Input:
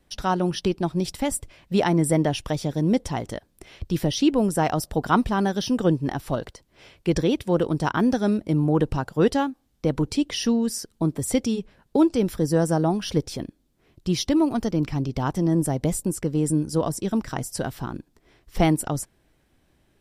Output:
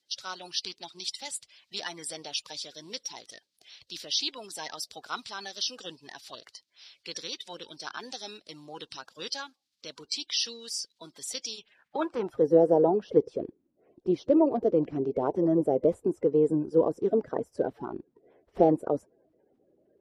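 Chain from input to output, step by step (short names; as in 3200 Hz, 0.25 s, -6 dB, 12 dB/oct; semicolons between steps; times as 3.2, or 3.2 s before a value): bin magnitudes rounded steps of 30 dB; band-pass sweep 4400 Hz -> 470 Hz, 11.53–12.49; gain +5.5 dB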